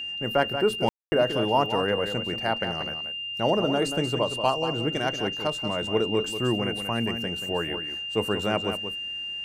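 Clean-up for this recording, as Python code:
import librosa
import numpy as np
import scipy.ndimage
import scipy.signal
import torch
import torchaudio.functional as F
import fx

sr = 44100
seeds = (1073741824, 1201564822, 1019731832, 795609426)

y = fx.notch(x, sr, hz=2800.0, q=30.0)
y = fx.fix_ambience(y, sr, seeds[0], print_start_s=8.93, print_end_s=9.43, start_s=0.89, end_s=1.12)
y = fx.fix_echo_inverse(y, sr, delay_ms=183, level_db=-9.0)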